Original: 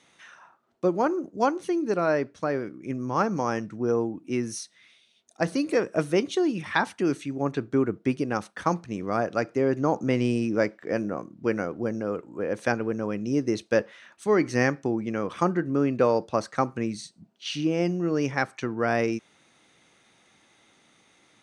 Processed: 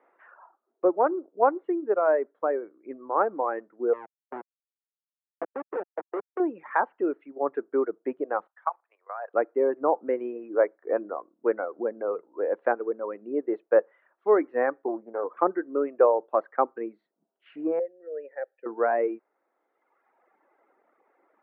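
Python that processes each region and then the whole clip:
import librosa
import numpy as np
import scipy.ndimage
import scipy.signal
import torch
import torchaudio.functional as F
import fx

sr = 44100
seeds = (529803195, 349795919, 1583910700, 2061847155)

y = fx.chain(x, sr, fx.law_mismatch(coded='A'),
    fx.schmitt(flips_db=-21.0),
    fx.band_squash(depth_pct=40), at=(3.93, 6.4))
y = fx.chain(y, sr, fx.highpass(hz=780.0, slope=24),
    fx.level_steps(step_db=12), at=(8.47, 9.34))
y = fx.chain(y, sr, fx.peak_eq(hz=180.0, db=8.0, octaves=0.36),
    fx.band_squash(depth_pct=40), at=(11.76, 12.28))
y = fx.chain(y, sr, fx.moving_average(points=16),
    fx.doppler_dist(depth_ms=0.26), at=(14.88, 15.37))
y = fx.chain(y, sr, fx.vowel_filter(vowel='e'),
    fx.low_shelf(hz=160.0, db=7.0), at=(17.79, 18.66))
y = scipy.signal.sosfilt(scipy.signal.butter(4, 390.0, 'highpass', fs=sr, output='sos'), y)
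y = fx.dereverb_blind(y, sr, rt60_s=1.4)
y = scipy.signal.sosfilt(scipy.signal.bessel(6, 1000.0, 'lowpass', norm='mag', fs=sr, output='sos'), y)
y = F.gain(torch.from_numpy(y), 5.0).numpy()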